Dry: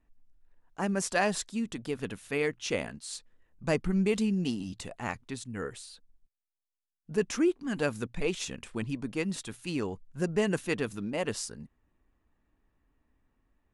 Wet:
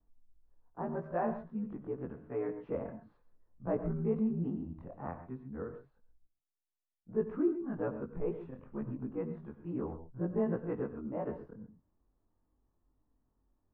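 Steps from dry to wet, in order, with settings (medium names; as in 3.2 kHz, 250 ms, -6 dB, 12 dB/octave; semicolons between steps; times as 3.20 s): short-time spectra conjugated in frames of 46 ms; low-pass 1.2 kHz 24 dB/octave; gated-style reverb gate 150 ms rising, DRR 9.5 dB; trim -1.5 dB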